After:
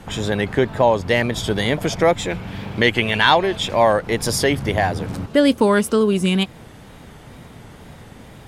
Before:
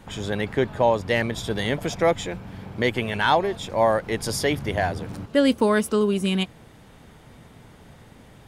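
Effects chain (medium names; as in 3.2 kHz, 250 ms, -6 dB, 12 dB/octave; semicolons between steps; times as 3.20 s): 2.30–3.93 s: peaking EQ 2.9 kHz +6.5 dB 1.4 oct; in parallel at -1.5 dB: compression, threshold -26 dBFS, peak gain reduction 12.5 dB; on the sum: wow and flutter 69 cents; trim +2 dB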